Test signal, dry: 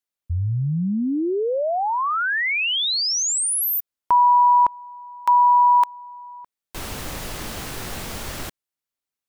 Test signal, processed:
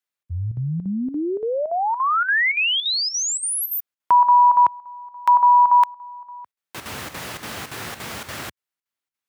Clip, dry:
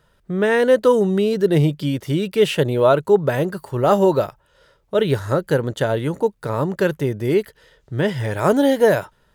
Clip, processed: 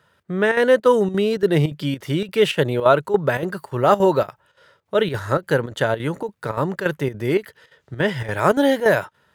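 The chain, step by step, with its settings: HPF 79 Hz 24 dB/oct; bell 1700 Hz +6 dB 2.2 oct; chopper 3.5 Hz, depth 65%, duty 80%; gain -2 dB

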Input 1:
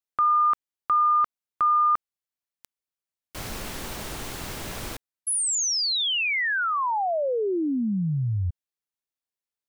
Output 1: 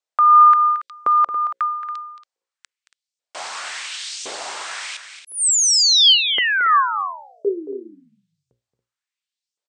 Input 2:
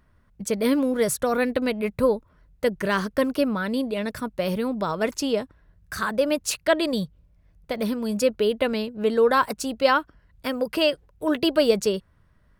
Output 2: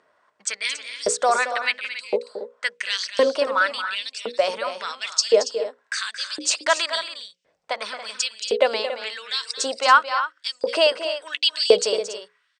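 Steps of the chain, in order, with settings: notches 60/120/180/240/300/360/420/480/540 Hz; dynamic EQ 6200 Hz, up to +5 dB, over -41 dBFS, Q 0.76; in parallel at +1 dB: limiter -18 dBFS; on the sum: elliptic low-pass 8500 Hz, stop band 40 dB; LFO high-pass saw up 0.94 Hz 440–6100 Hz; on a send: loudspeakers at several distances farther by 77 m -11 dB, 96 m -12 dB; on the sum: gain -1.5 dB

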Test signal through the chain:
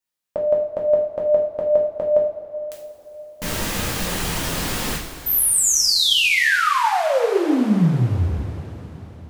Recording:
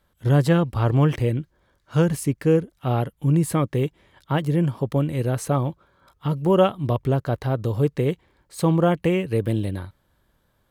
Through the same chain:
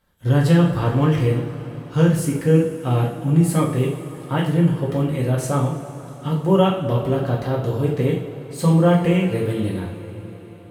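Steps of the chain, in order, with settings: two-slope reverb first 0.48 s, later 4.6 s, from -18 dB, DRR -3.5 dB; gain -2.5 dB

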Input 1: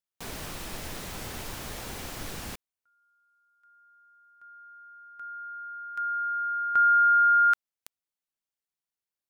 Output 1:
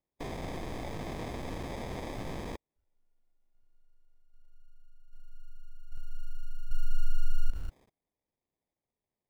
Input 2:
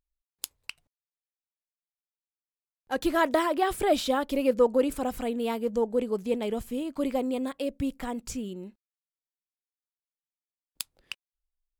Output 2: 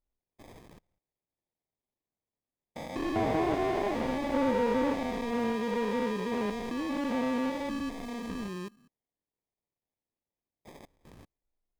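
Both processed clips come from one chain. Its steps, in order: stepped spectrum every 0.2 s; sample-and-hold 31×; slew limiter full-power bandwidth 48 Hz; gain +1.5 dB

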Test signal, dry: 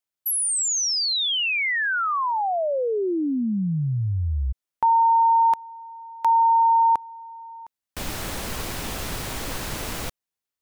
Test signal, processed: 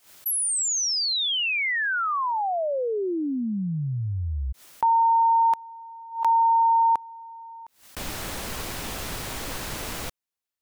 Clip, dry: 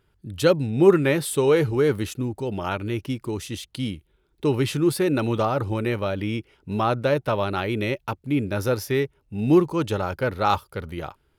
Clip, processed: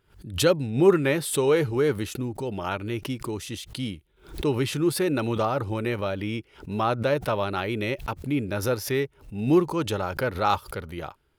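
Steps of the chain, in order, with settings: low shelf 360 Hz -2.5 dB; backwards sustainer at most 140 dB/s; gain -1.5 dB

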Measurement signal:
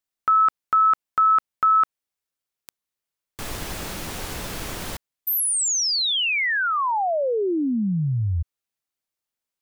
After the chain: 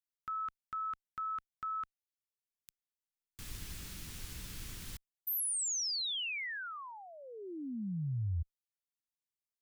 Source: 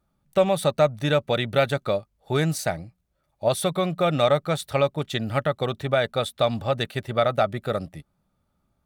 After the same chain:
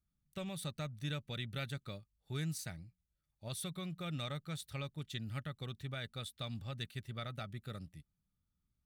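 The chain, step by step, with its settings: passive tone stack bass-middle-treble 6-0-2; gain +2 dB

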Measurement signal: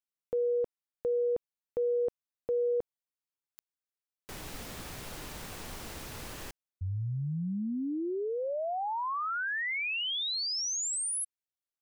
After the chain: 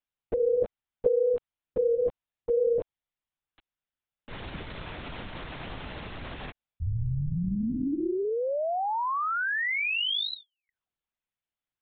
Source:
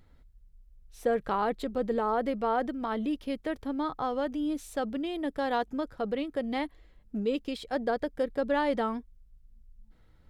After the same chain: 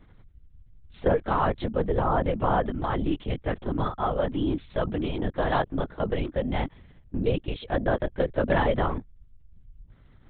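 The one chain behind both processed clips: LPC vocoder at 8 kHz whisper; gain +4.5 dB

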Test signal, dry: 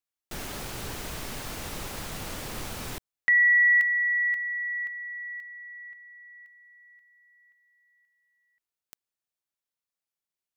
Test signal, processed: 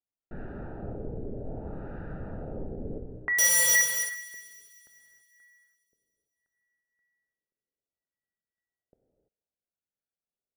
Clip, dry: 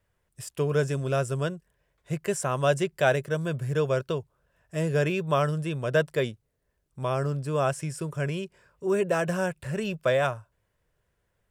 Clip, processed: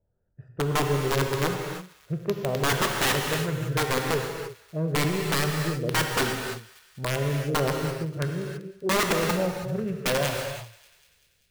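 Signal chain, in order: Wiener smoothing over 41 samples; LFO low-pass sine 0.63 Hz 450–1600 Hz; dynamic EQ 790 Hz, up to -8 dB, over -38 dBFS, Q 1.6; wrapped overs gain 19 dB; on a send: thinning echo 0.194 s, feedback 64%, high-pass 1100 Hz, level -19 dB; on the sum: non-linear reverb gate 0.36 s flat, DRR 2 dB

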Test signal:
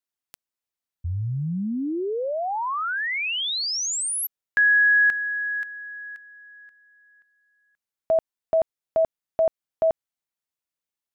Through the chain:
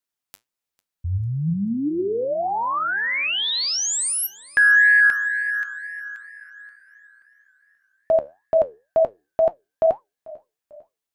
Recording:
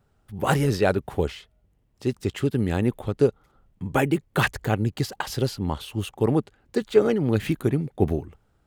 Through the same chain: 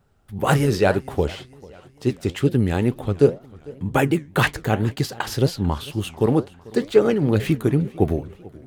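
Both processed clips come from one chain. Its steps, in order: flange 2 Hz, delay 5.4 ms, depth 9 ms, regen +74%; warbling echo 0.446 s, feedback 49%, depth 121 cents, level -22 dB; gain +7.5 dB

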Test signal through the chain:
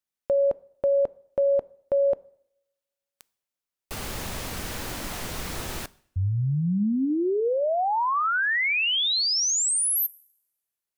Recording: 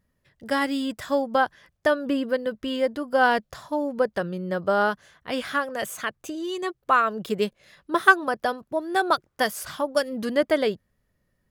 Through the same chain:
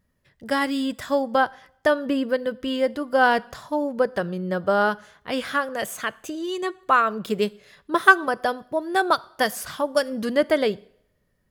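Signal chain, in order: two-slope reverb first 0.62 s, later 1.6 s, from -25 dB, DRR 19.5 dB; gain +1.5 dB

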